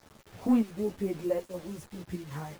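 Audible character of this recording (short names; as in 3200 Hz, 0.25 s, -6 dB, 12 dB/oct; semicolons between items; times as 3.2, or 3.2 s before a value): chopped level 1.3 Hz, depth 60%, duty 80%; a quantiser's noise floor 8-bit, dither none; a shimmering, thickened sound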